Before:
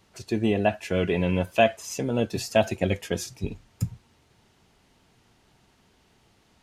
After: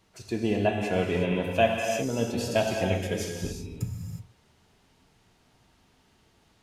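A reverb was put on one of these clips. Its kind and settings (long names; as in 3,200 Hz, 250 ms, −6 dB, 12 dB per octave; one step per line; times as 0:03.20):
reverb whose tail is shaped and stops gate 390 ms flat, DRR 0.5 dB
level −4 dB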